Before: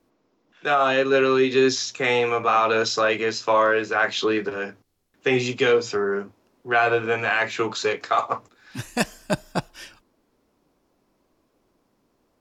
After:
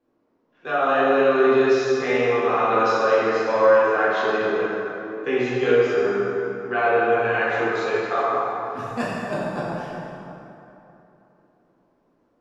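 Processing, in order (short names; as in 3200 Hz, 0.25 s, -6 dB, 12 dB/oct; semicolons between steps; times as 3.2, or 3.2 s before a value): LPF 1600 Hz 6 dB/oct; low shelf 120 Hz -9.5 dB; plate-style reverb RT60 3.2 s, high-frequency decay 0.55×, DRR -8.5 dB; gain -6.5 dB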